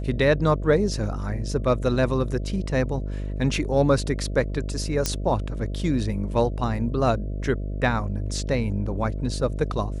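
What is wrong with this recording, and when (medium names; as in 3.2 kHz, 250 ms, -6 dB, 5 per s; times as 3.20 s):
buzz 50 Hz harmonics 13 -29 dBFS
5.06 s: pop -7 dBFS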